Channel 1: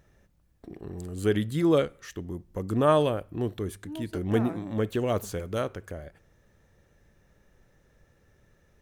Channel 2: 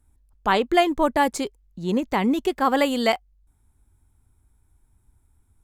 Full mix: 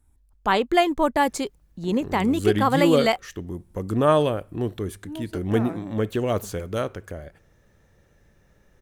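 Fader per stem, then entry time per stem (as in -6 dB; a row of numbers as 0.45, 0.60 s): +3.0, -0.5 dB; 1.20, 0.00 s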